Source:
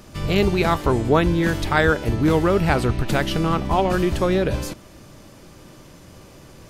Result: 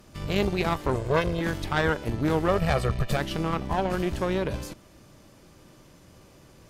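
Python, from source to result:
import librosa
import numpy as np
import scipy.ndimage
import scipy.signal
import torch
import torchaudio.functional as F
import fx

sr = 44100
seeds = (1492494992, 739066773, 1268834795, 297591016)

y = fx.lower_of_two(x, sr, delay_ms=1.9, at=(0.94, 1.41))
y = fx.comb(y, sr, ms=1.7, depth=0.85, at=(2.48, 3.17))
y = fx.tube_stage(y, sr, drive_db=10.0, bias=0.8)
y = F.gain(torch.from_numpy(y), -3.0).numpy()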